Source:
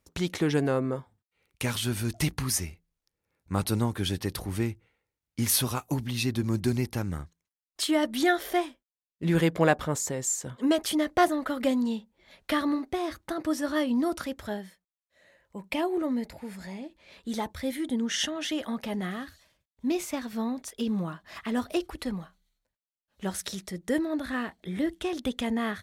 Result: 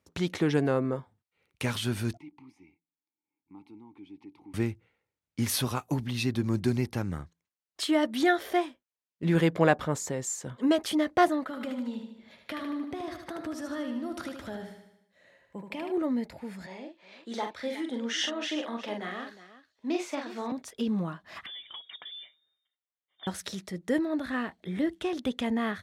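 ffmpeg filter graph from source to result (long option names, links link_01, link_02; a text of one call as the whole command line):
ffmpeg -i in.wav -filter_complex "[0:a]asettb=1/sr,asplit=3[link_01][link_02][link_03];[link_01]atrim=end=2.174[link_04];[link_02]atrim=start=2.17:end=4.54,asetpts=PTS-STARTPTS,afade=type=in:duration=0.004:curve=qsin,afade=type=out:start_time=2.366:duration=0.004:curve=qsin,acompressor=threshold=-36dB:ratio=3:attack=3.2:release=140:knee=1:detection=peak,asplit=3[link_05][link_06][link_07];[link_05]bandpass=frequency=300:width_type=q:width=8,volume=0dB[link_08];[link_06]bandpass=frequency=870:width_type=q:width=8,volume=-6dB[link_09];[link_07]bandpass=frequency=2240:width_type=q:width=8,volume=-9dB[link_10];[link_08][link_09][link_10]amix=inputs=3:normalize=0[link_11];[link_03]atrim=start=4.536[link_12];[link_04][link_11]acrossfade=duration=0.004:curve1=hsin:curve2=qsin[link_13];[link_13][link_12]acrossfade=duration=0.004:curve1=qsin:curve2=hsin,asettb=1/sr,asplit=3[link_14][link_15][link_16];[link_14]atrim=end=11.434[link_17];[link_15]atrim=start=11.43:end=15.92,asetpts=PTS-STARTPTS,afade=type=in:duration=0.004:curve=qsin,afade=type=out:start_time=4.486:duration=0.004:curve=qsin,acompressor=threshold=-34dB:ratio=4:attack=3.2:release=140:knee=1:detection=peak,aecho=1:1:76|152|228|304|380|456|532:0.501|0.266|0.141|0.0746|0.0395|0.021|0.0111,atrim=end_sample=198009[link_18];[link_16]atrim=start=15.916[link_19];[link_17][link_18]acrossfade=duration=0.004:curve1=hsin:curve2=qsin[link_20];[link_20][link_19]acrossfade=duration=0.004:curve1=qsin:curve2=hsin,asettb=1/sr,asplit=3[link_21][link_22][link_23];[link_21]atrim=end=16.664[link_24];[link_22]atrim=start=16.66:end=20.52,asetpts=PTS-STARTPTS,afade=type=in:duration=0.004:curve=qsin,afade=type=out:start_time=3.856:duration=0.004:curve=qsin,acrossover=split=270 8000:gain=0.0794 1 0.224[link_25][link_26][link_27];[link_25][link_26][link_27]amix=inputs=3:normalize=0,aecho=1:1:43|362:0.596|0.178,atrim=end_sample=170226[link_28];[link_23]atrim=start=20.516[link_29];[link_24][link_28]acrossfade=duration=0.004:curve1=hsin:curve2=qsin[link_30];[link_30][link_29]acrossfade=duration=0.004:curve1=qsin:curve2=hsin,asettb=1/sr,asplit=3[link_31][link_32][link_33];[link_31]atrim=end=21.464[link_34];[link_32]atrim=start=21.46:end=23.27,asetpts=PTS-STARTPTS,afade=type=in:duration=0.004:curve=qsin,afade=type=out:start_time=1.806:duration=0.004:curve=qsin,acompressor=threshold=-37dB:ratio=16:attack=3.2:release=140:knee=1:detection=peak,asuperstop=centerf=1100:order=20:qfactor=3.6,lowpass=frequency=3100:width_type=q:width=0.5098,lowpass=frequency=3100:width_type=q:width=0.6013,lowpass=frequency=3100:width_type=q:width=0.9,lowpass=frequency=3100:width_type=q:width=2.563,afreqshift=-3700[link_35];[link_33]atrim=start=23.266[link_36];[link_34][link_35]acrossfade=duration=0.004:curve1=hsin:curve2=qsin[link_37];[link_37][link_36]acrossfade=duration=0.004:curve1=qsin:curve2=hsin,highpass=83,highshelf=frequency=6600:gain=-9.5" out.wav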